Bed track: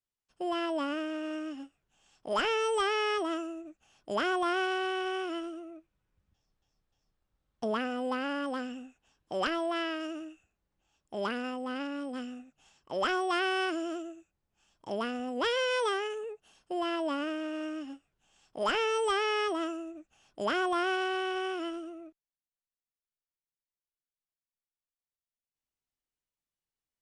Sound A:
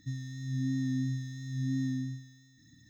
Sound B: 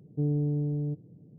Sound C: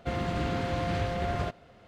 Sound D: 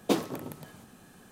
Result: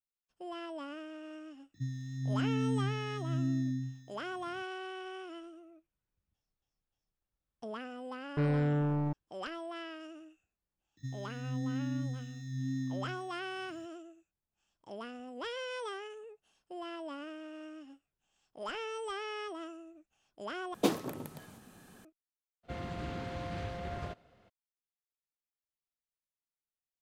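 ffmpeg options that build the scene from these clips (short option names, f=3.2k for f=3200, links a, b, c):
-filter_complex "[1:a]asplit=2[a][b];[0:a]volume=-10.5dB[c];[a]equalizer=f=170:w=0.4:g=5[d];[2:a]acrusher=bits=4:mix=0:aa=0.5[e];[c]asplit=2[f][g];[f]atrim=end=20.744[h];[4:a]atrim=end=1.31,asetpts=PTS-STARTPTS,volume=-2.5dB[i];[g]atrim=start=22.046[j];[d]atrim=end=2.89,asetpts=PTS-STARTPTS,volume=-5dB,afade=t=in:d=0.004:c=hsin,afade=t=out:st=2.886:d=0.004:c=hsin,adelay=1740[k];[e]atrim=end=1.38,asetpts=PTS-STARTPTS,volume=-2.5dB,afade=t=in:d=0.004:c=hsin,afade=t=out:st=1.376:d=0.004:c=hsin,adelay=8190[l];[b]atrim=end=2.89,asetpts=PTS-STARTPTS,volume=-4dB,afade=t=in:d=0.004:c=hsin,afade=t=out:st=2.886:d=0.004:c=hsin,adelay=10970[m];[3:a]atrim=end=1.87,asetpts=PTS-STARTPTS,volume=-9.5dB,afade=t=in:d=0.02,afade=t=out:st=1.85:d=0.02,adelay=22630[n];[h][i]acrossfade=d=0.004:c1=hsin:c2=hsin[o];[o][j]acrossfade=d=0.004:c1=hsin:c2=hsin[p];[p][k][l][m][n]amix=inputs=5:normalize=0"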